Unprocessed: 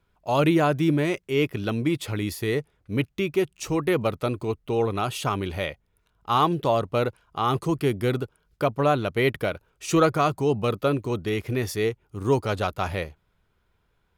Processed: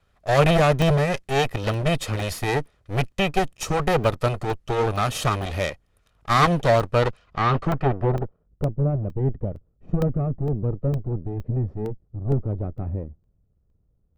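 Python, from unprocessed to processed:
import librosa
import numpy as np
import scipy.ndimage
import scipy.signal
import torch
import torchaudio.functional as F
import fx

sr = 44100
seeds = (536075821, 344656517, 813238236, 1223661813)

y = fx.lower_of_two(x, sr, delay_ms=1.6)
y = fx.filter_sweep_lowpass(y, sr, from_hz=11000.0, to_hz=290.0, start_s=6.87, end_s=8.7, q=0.81)
y = fx.buffer_crackle(y, sr, first_s=0.82, period_s=0.46, block=64, kind='zero')
y = y * librosa.db_to_amplitude(5.5)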